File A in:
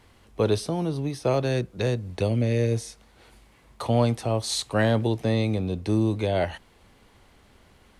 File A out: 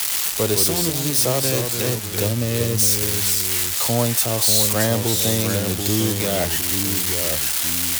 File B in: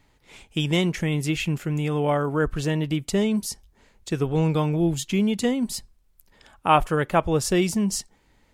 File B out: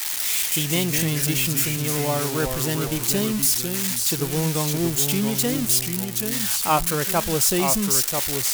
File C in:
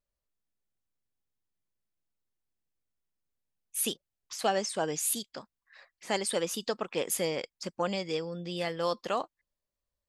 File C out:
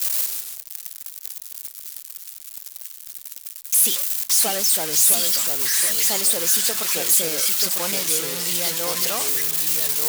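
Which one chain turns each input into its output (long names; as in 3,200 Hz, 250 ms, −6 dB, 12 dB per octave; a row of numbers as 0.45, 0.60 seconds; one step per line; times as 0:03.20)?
spike at every zero crossing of −12 dBFS
noise that follows the level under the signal 23 dB
delay with pitch and tempo change per echo 115 ms, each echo −2 semitones, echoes 2, each echo −6 dB
normalise the peak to −6 dBFS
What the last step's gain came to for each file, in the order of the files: +0.5, −2.5, −0.5 decibels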